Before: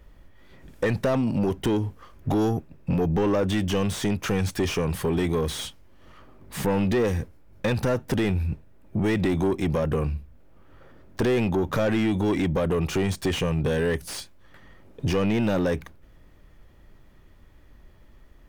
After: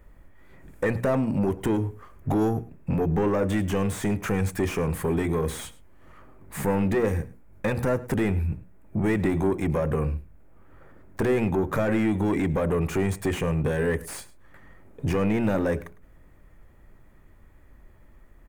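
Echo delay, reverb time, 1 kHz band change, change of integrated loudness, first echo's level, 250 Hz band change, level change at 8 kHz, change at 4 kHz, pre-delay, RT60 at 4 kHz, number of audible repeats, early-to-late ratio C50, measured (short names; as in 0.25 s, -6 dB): 0.105 s, none, 0.0 dB, -0.5 dB, -19.5 dB, -0.5 dB, -2.0 dB, -8.5 dB, none, none, 1, none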